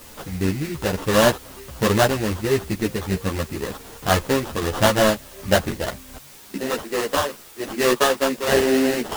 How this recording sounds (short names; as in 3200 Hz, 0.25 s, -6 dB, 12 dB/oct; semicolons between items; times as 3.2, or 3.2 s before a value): aliases and images of a low sample rate 2300 Hz, jitter 20%; tremolo saw down 1.3 Hz, depth 30%; a quantiser's noise floor 8-bit, dither triangular; a shimmering, thickened sound